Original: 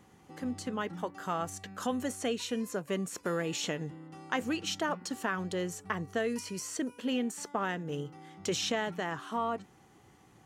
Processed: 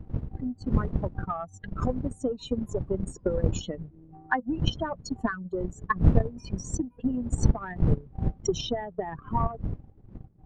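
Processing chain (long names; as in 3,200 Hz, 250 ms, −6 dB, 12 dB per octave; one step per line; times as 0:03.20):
expanding power law on the bin magnitudes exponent 3.3
wind on the microphone 130 Hz −34 dBFS
transient designer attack +10 dB, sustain −10 dB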